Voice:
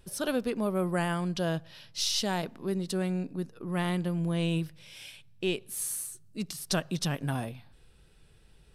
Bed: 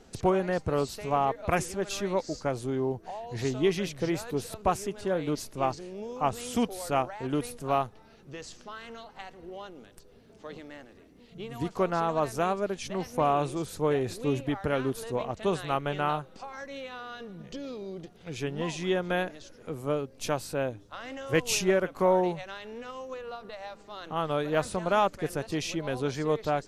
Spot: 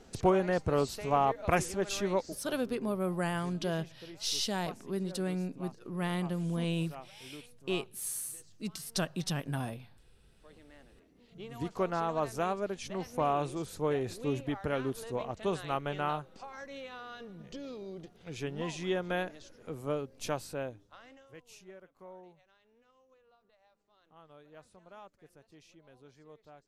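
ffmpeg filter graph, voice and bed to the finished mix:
ffmpeg -i stem1.wav -i stem2.wav -filter_complex "[0:a]adelay=2250,volume=-3.5dB[link_01];[1:a]volume=14.5dB,afade=type=out:start_time=2.13:duration=0.28:silence=0.112202,afade=type=in:start_time=10.31:duration=1.31:silence=0.16788,afade=type=out:start_time=20.29:duration=1.06:silence=0.0749894[link_02];[link_01][link_02]amix=inputs=2:normalize=0" out.wav

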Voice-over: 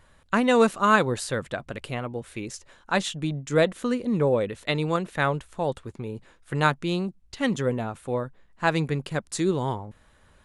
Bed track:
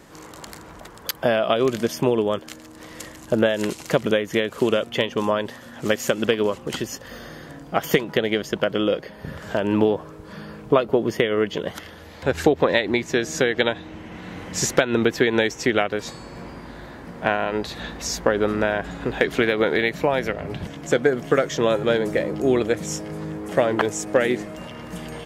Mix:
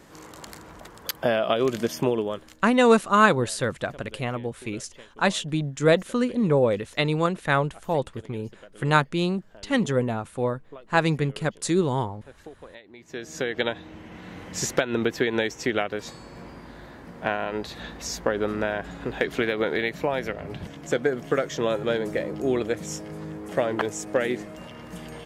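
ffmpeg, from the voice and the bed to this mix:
ffmpeg -i stem1.wav -i stem2.wav -filter_complex "[0:a]adelay=2300,volume=2dB[link_01];[1:a]volume=18.5dB,afade=type=out:start_time=2.04:duration=0.66:silence=0.0668344,afade=type=in:start_time=12.96:duration=0.7:silence=0.0841395[link_02];[link_01][link_02]amix=inputs=2:normalize=0" out.wav

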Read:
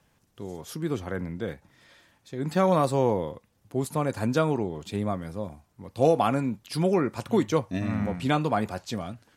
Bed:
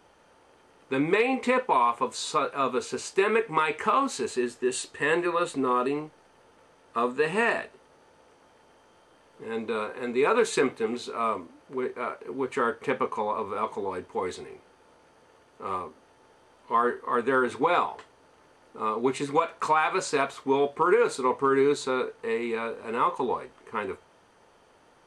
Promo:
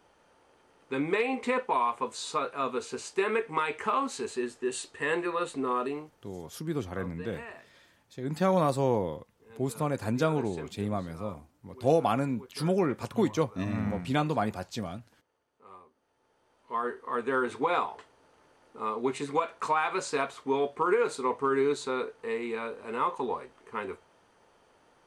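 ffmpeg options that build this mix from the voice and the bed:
ffmpeg -i stem1.wav -i stem2.wav -filter_complex "[0:a]adelay=5850,volume=-3dB[link_01];[1:a]volume=11dB,afade=type=out:start_time=5.79:duration=0.7:silence=0.177828,afade=type=in:start_time=15.93:duration=1.5:silence=0.16788[link_02];[link_01][link_02]amix=inputs=2:normalize=0" out.wav

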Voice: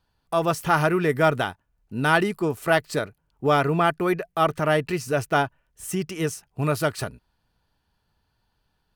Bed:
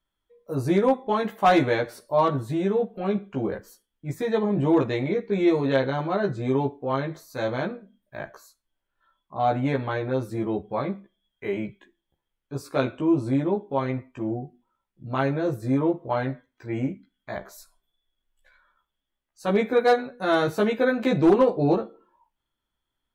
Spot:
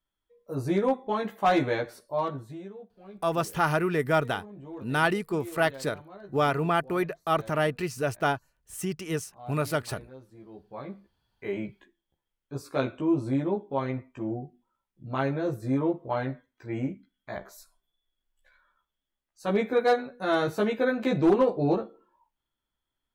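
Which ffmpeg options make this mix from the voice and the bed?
ffmpeg -i stem1.wav -i stem2.wav -filter_complex "[0:a]adelay=2900,volume=-4.5dB[link_01];[1:a]volume=13.5dB,afade=type=out:start_time=1.89:duration=0.85:silence=0.141254,afade=type=in:start_time=10.5:duration=1.07:silence=0.125893[link_02];[link_01][link_02]amix=inputs=2:normalize=0" out.wav

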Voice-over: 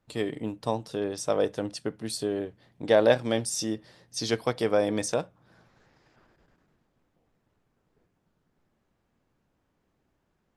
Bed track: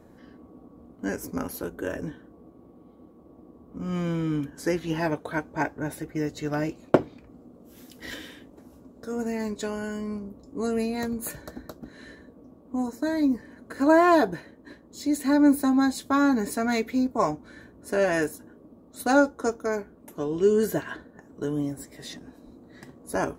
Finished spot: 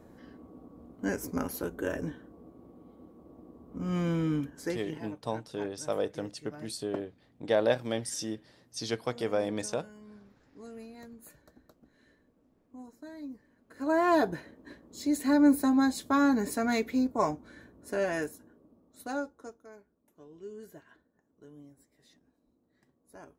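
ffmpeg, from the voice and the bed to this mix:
ffmpeg -i stem1.wav -i stem2.wav -filter_complex "[0:a]adelay=4600,volume=-5.5dB[link_01];[1:a]volume=14.5dB,afade=type=out:start_time=4.25:duration=0.75:silence=0.133352,afade=type=in:start_time=13.66:duration=0.67:silence=0.158489,afade=type=out:start_time=16.99:duration=2.67:silence=0.0944061[link_02];[link_01][link_02]amix=inputs=2:normalize=0" out.wav

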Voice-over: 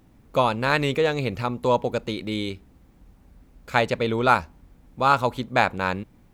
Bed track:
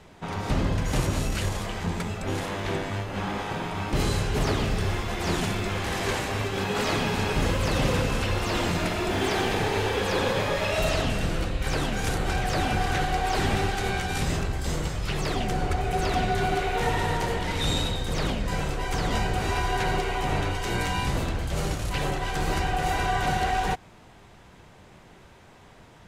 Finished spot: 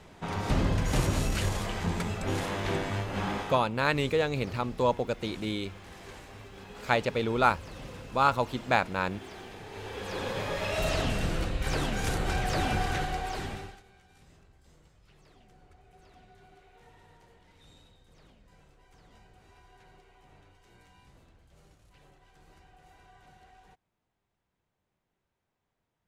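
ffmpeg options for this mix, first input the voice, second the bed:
ffmpeg -i stem1.wav -i stem2.wav -filter_complex "[0:a]adelay=3150,volume=-5dB[link_01];[1:a]volume=15dB,afade=type=out:start_time=3.32:duration=0.37:silence=0.125893,afade=type=in:start_time=9.66:duration=1.41:silence=0.149624,afade=type=out:start_time=12.74:duration=1.09:silence=0.0354813[link_02];[link_01][link_02]amix=inputs=2:normalize=0" out.wav

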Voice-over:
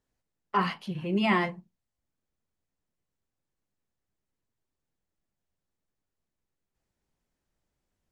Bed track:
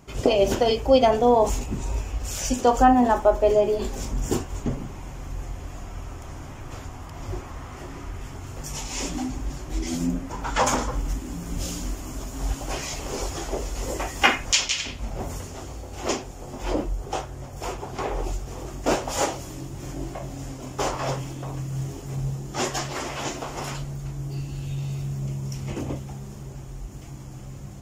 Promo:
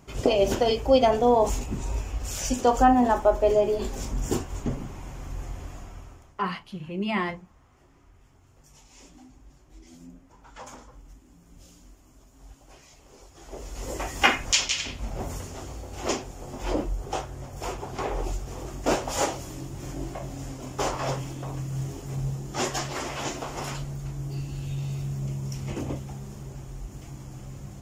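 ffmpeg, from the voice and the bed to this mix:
ffmpeg -i stem1.wav -i stem2.wav -filter_complex "[0:a]adelay=5850,volume=-2.5dB[link_01];[1:a]volume=18dB,afade=type=out:start_time=5.62:duration=0.73:silence=0.105925,afade=type=in:start_time=13.34:duration=0.81:silence=0.1[link_02];[link_01][link_02]amix=inputs=2:normalize=0" out.wav

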